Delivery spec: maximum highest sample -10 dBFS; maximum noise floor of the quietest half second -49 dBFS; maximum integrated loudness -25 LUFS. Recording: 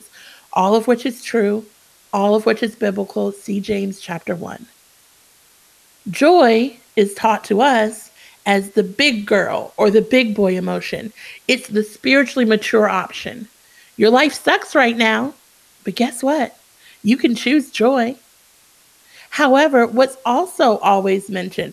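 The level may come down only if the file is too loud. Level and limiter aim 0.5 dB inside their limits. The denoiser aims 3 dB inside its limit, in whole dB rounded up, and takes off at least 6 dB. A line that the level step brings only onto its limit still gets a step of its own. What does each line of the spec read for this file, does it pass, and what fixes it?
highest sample -2.0 dBFS: fail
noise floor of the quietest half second -52 dBFS: OK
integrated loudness -16.5 LUFS: fail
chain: gain -9 dB

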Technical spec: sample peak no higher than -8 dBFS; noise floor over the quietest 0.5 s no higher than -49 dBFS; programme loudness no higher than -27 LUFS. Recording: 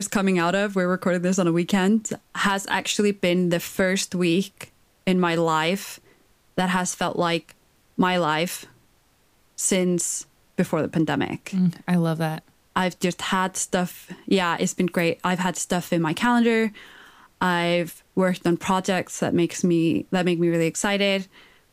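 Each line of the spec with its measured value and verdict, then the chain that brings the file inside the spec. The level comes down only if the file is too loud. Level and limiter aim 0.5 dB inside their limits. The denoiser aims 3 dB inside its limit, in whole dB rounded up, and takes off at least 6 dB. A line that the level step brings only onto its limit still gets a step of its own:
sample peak -9.0 dBFS: OK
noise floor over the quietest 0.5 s -61 dBFS: OK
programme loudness -23.0 LUFS: fail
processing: gain -4.5 dB

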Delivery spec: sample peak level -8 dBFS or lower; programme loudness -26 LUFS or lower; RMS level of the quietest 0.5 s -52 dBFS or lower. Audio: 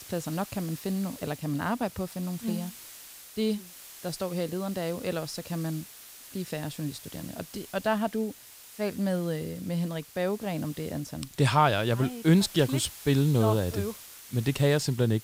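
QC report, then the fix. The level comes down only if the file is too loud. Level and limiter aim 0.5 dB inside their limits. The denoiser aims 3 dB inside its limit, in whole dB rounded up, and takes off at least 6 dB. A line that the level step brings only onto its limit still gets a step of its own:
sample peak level -9.5 dBFS: OK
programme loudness -29.5 LUFS: OK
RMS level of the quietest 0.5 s -48 dBFS: fail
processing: denoiser 7 dB, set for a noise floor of -48 dBFS

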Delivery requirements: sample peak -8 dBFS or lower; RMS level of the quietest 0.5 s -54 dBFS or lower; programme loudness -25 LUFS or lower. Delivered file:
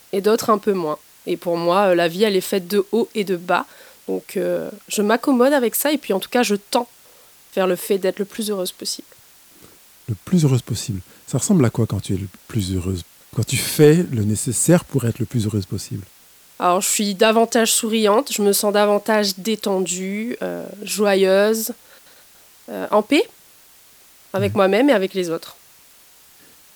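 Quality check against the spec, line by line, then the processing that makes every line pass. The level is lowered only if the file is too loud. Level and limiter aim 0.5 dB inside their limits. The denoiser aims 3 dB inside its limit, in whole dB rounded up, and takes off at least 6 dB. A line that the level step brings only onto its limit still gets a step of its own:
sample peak -1.5 dBFS: fail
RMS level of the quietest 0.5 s -49 dBFS: fail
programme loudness -19.5 LUFS: fail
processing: gain -6 dB; limiter -8.5 dBFS

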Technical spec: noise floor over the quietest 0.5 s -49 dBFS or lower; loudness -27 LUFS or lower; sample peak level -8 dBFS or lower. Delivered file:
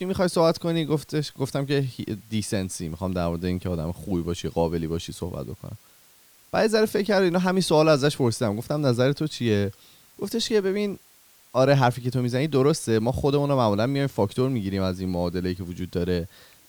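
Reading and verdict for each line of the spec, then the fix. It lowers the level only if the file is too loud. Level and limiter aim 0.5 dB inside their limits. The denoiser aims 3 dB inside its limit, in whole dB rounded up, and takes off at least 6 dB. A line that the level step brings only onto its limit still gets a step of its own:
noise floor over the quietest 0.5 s -56 dBFS: OK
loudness -24.5 LUFS: fail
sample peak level -7.0 dBFS: fail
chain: gain -3 dB

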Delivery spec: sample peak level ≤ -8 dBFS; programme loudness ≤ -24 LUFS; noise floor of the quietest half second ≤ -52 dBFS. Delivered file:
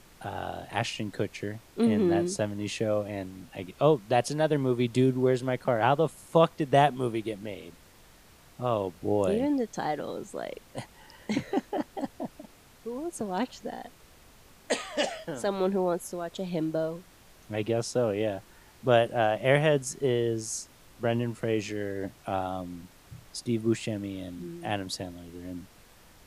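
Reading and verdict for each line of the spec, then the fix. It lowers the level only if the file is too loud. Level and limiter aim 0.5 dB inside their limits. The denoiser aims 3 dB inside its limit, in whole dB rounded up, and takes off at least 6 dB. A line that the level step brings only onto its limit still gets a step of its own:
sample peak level -7.0 dBFS: fail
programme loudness -29.0 LUFS: OK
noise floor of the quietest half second -55 dBFS: OK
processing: limiter -8.5 dBFS

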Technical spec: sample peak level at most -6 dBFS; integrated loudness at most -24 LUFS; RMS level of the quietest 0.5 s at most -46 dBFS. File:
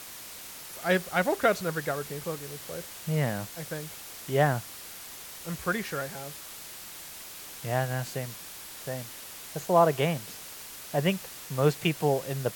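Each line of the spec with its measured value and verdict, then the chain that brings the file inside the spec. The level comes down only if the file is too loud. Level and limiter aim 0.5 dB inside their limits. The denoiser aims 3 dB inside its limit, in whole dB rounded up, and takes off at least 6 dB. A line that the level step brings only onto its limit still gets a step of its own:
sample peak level -9.5 dBFS: OK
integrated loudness -30.5 LUFS: OK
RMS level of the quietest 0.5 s -44 dBFS: fail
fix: denoiser 6 dB, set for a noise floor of -44 dBFS

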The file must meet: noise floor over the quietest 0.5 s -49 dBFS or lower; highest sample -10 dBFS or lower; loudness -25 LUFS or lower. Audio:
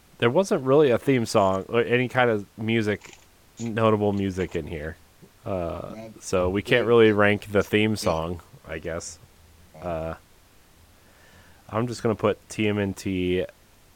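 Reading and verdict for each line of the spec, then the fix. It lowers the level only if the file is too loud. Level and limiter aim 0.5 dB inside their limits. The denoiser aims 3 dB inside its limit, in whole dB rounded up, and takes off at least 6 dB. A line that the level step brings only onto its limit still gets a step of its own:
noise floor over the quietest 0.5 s -55 dBFS: OK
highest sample -4.5 dBFS: fail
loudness -23.5 LUFS: fail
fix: gain -2 dB; limiter -10.5 dBFS

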